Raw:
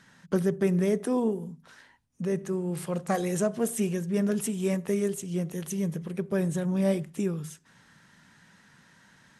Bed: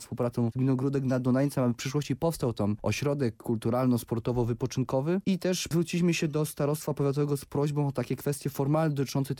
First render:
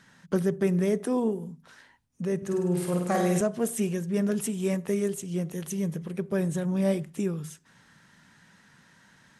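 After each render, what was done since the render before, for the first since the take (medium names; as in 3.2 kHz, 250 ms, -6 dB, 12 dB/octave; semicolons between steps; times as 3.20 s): 2.37–3.41 s: flutter echo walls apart 8.7 m, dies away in 0.86 s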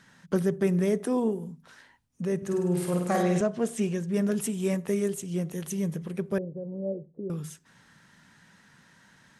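3.22–4.07 s: low-pass 5.1 kHz -> 8.5 kHz; 6.38–7.30 s: four-pole ladder low-pass 560 Hz, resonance 65%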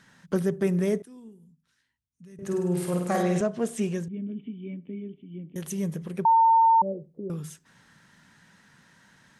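1.02–2.39 s: amplifier tone stack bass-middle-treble 6-0-2; 4.08–5.56 s: cascade formant filter i; 6.25–6.82 s: bleep 906 Hz -15 dBFS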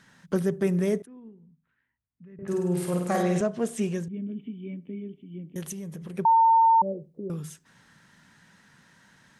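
1.06–2.48 s: low-pass 2.3 kHz 24 dB/octave; 5.71–6.16 s: compression, threshold -34 dBFS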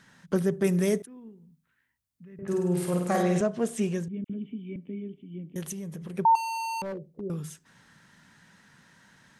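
0.64–2.41 s: treble shelf 3.1 kHz +9 dB; 4.24–4.76 s: phase dispersion lows, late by 56 ms, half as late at 1.8 kHz; 6.35–7.21 s: overload inside the chain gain 31.5 dB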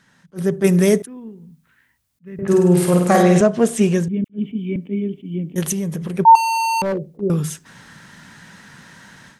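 level rider gain up to 14.5 dB; attacks held to a fixed rise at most 400 dB/s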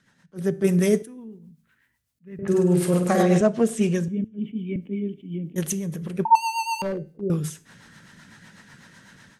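rotary cabinet horn 8 Hz; feedback comb 110 Hz, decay 0.46 s, harmonics all, mix 40%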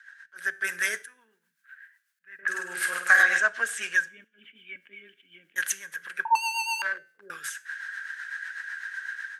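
resonant high-pass 1.6 kHz, resonance Q 14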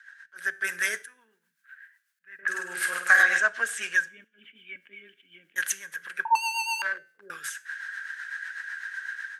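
no audible change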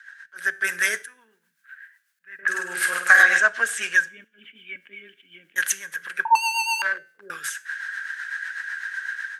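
trim +5 dB; peak limiter -2 dBFS, peak gain reduction 1.5 dB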